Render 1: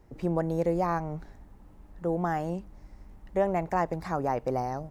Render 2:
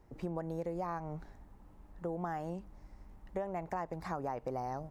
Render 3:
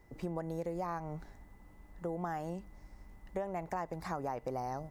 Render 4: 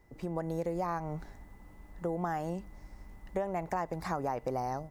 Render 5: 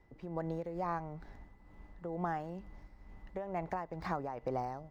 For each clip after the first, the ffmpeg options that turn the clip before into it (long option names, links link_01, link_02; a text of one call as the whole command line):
ffmpeg -i in.wav -af "equalizer=frequency=980:width=1.3:gain=3,acompressor=threshold=-29dB:ratio=6,volume=-5dB" out.wav
ffmpeg -i in.wav -af "highshelf=frequency=4500:gain=6.5,aeval=exprs='val(0)+0.000316*sin(2*PI*2000*n/s)':channel_layout=same" out.wav
ffmpeg -i in.wav -af "dynaudnorm=framelen=190:gausssize=3:maxgain=5.5dB,volume=-1.5dB" out.wav
ffmpeg -i in.wav -filter_complex "[0:a]tremolo=f=2.2:d=0.53,acrossover=split=810|5300[link_01][link_02][link_03];[link_03]acrusher=samples=18:mix=1:aa=0.000001:lfo=1:lforange=10.8:lforate=2.3[link_04];[link_01][link_02][link_04]amix=inputs=3:normalize=0,volume=-1.5dB" out.wav